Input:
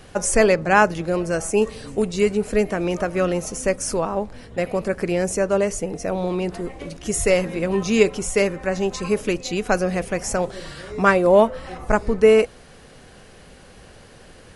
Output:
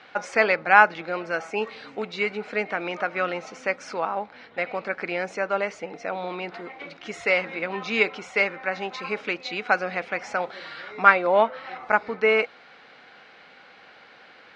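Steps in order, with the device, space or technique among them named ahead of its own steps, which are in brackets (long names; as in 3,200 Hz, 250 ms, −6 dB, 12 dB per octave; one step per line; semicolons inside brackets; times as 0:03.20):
phone earpiece (loudspeaker in its box 350–4,400 Hz, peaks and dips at 390 Hz −6 dB, 570 Hz −3 dB, 810 Hz +5 dB, 1,400 Hz +8 dB, 2,200 Hz +9 dB, 3,900 Hz +4 dB)
level −3.5 dB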